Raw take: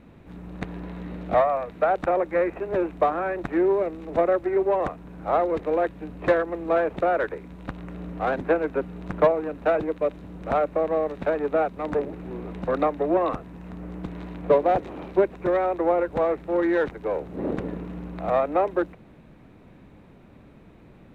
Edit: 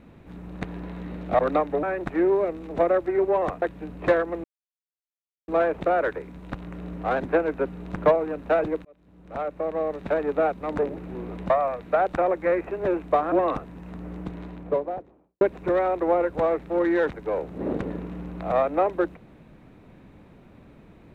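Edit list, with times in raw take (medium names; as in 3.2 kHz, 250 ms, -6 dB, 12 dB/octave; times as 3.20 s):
1.39–3.21 s: swap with 12.66–13.10 s
5.00–5.82 s: delete
6.64 s: insert silence 1.04 s
10.01–11.33 s: fade in
13.89–15.19 s: studio fade out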